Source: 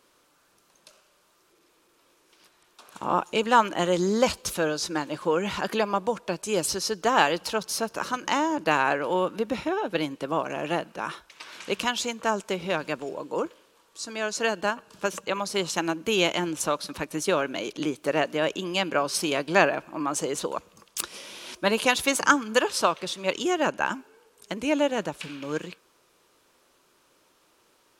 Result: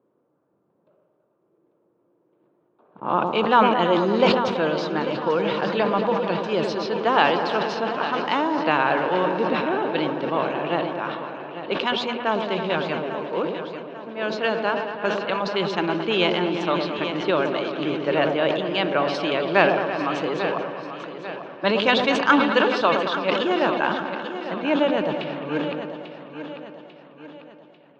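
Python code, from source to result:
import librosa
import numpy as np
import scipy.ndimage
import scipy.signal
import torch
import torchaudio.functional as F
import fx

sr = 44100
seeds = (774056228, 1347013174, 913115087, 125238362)

y = scipy.signal.sosfilt(scipy.signal.ellip(3, 1.0, 50, [120.0, 3800.0], 'bandpass', fs=sr, output='sos'), x)
y = fx.echo_opening(y, sr, ms=110, hz=750, octaves=1, feedback_pct=70, wet_db=-6)
y = fx.env_lowpass(y, sr, base_hz=480.0, full_db=-23.5)
y = fx.echo_feedback(y, sr, ms=844, feedback_pct=45, wet_db=-11)
y = fx.sustainer(y, sr, db_per_s=46.0)
y = y * librosa.db_to_amplitude(2.0)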